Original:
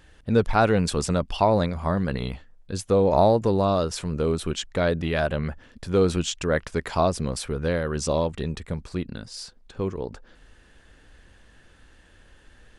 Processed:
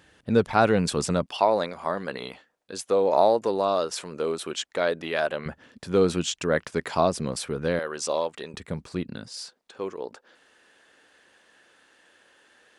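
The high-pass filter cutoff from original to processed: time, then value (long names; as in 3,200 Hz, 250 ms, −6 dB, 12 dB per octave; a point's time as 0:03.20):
130 Hz
from 0:01.26 380 Hz
from 0:05.46 150 Hz
from 0:07.79 480 Hz
from 0:08.54 130 Hz
from 0:09.38 400 Hz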